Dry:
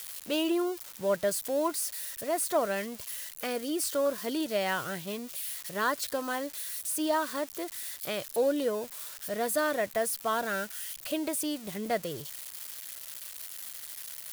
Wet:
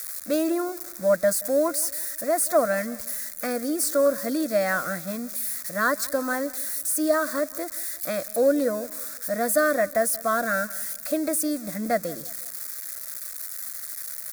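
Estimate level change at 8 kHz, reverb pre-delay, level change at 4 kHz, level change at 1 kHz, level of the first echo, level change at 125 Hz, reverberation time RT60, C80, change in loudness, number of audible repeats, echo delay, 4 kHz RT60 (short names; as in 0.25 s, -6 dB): +7.0 dB, none, -1.0 dB, +4.5 dB, -20.5 dB, +5.0 dB, none, none, +6.5 dB, 2, 0.179 s, none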